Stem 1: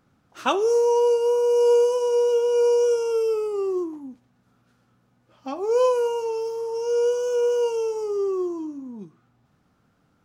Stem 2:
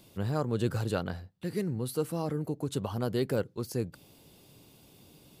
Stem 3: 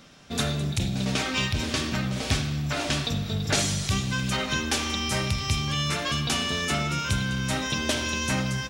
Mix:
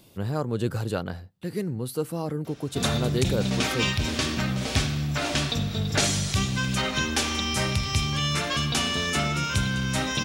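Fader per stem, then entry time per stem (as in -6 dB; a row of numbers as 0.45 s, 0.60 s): mute, +2.5 dB, +1.0 dB; mute, 0.00 s, 2.45 s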